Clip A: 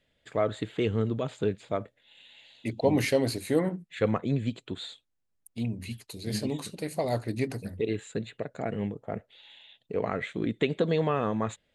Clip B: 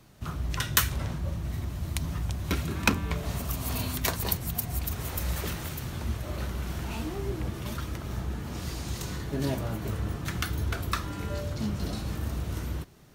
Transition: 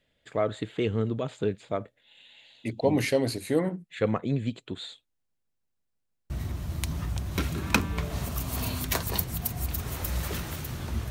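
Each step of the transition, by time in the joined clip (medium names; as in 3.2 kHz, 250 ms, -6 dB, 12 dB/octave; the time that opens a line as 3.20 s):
clip A
5.18 s: stutter in place 0.16 s, 7 plays
6.30 s: go over to clip B from 1.43 s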